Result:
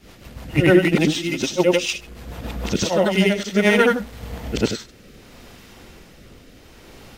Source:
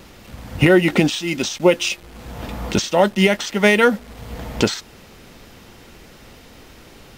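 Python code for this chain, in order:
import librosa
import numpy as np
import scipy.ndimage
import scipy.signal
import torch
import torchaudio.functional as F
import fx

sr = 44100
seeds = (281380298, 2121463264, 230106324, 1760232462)

y = fx.frame_reverse(x, sr, frame_ms=204.0)
y = fx.rotary_switch(y, sr, hz=6.7, then_hz=0.65, switch_at_s=2.49)
y = y * librosa.db_to_amplitude(4.0)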